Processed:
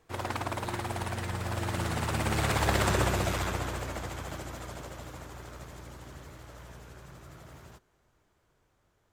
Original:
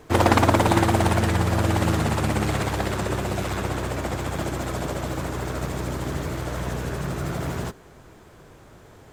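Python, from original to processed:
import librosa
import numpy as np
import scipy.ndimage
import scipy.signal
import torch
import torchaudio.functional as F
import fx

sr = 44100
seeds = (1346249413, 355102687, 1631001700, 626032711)

y = fx.doppler_pass(x, sr, speed_mps=15, closest_m=5.8, pass_at_s=2.9)
y = fx.peak_eq(y, sr, hz=250.0, db=-6.0, octaves=2.7)
y = F.gain(torch.from_numpy(y), 3.0).numpy()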